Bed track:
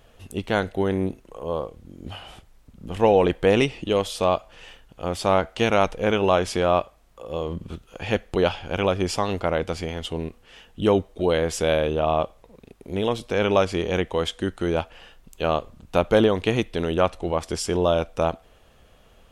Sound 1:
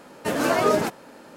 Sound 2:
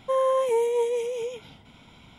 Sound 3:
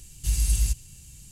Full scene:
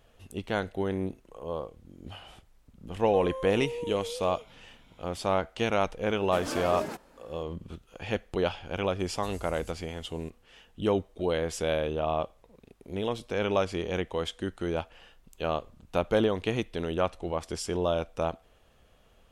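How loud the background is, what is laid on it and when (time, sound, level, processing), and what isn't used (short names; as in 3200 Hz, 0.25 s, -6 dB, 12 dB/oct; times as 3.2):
bed track -7 dB
3.05 add 2 -9 dB + limiter -22 dBFS
6.07 add 1 -12.5 dB
8.99 add 3 -15 dB + compressor, threshold -27 dBFS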